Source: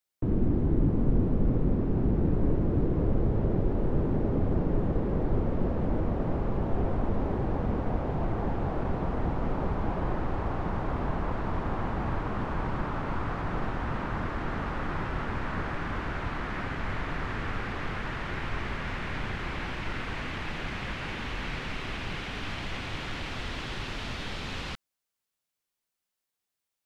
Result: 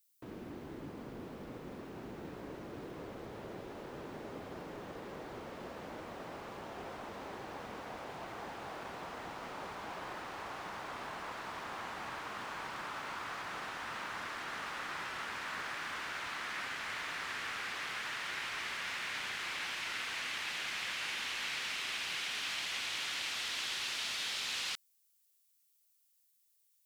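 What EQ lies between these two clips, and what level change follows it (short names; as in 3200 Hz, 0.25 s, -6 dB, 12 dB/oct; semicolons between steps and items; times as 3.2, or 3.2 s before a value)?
differentiator; +10.0 dB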